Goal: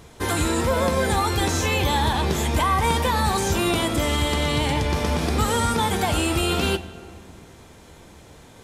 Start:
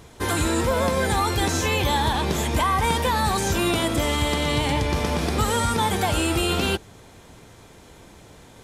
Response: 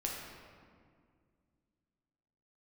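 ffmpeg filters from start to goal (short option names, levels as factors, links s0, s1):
-filter_complex "[0:a]asplit=2[s0][s1];[1:a]atrim=start_sample=2205,adelay=13[s2];[s1][s2]afir=irnorm=-1:irlink=0,volume=0.2[s3];[s0][s3]amix=inputs=2:normalize=0"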